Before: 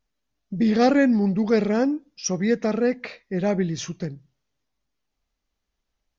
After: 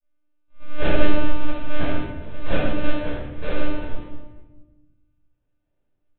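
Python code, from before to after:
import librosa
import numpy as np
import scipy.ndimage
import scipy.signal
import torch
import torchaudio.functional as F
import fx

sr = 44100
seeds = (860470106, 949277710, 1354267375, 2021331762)

y = fx.peak_eq(x, sr, hz=1700.0, db=10.5, octaves=0.66)
y = fx.auto_swell(y, sr, attack_ms=201.0)
y = fx.sample_hold(y, sr, seeds[0], rate_hz=1100.0, jitter_pct=20)
y = fx.granulator(y, sr, seeds[1], grain_ms=100.0, per_s=20.0, spray_ms=27.0, spread_st=0)
y = fx.lpc_monotone(y, sr, seeds[2], pitch_hz=300.0, order=8)
y = fx.room_shoebox(y, sr, seeds[3], volume_m3=660.0, walls='mixed', distance_m=5.4)
y = y * librosa.db_to_amplitude(-11.0)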